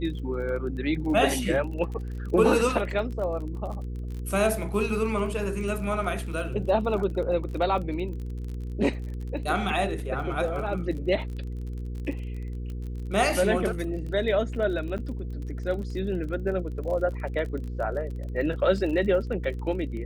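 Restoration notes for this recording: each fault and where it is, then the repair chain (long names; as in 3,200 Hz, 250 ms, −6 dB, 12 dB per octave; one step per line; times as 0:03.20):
surface crackle 34 per second −35 dBFS
mains hum 60 Hz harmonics 8 −33 dBFS
0:14.98–0:14.99: drop-out 8.1 ms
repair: click removal
hum removal 60 Hz, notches 8
repair the gap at 0:14.98, 8.1 ms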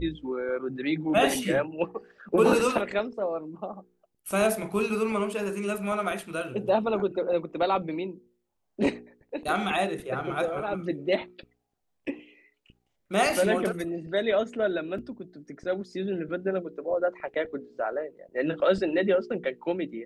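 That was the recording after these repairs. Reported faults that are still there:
none of them is left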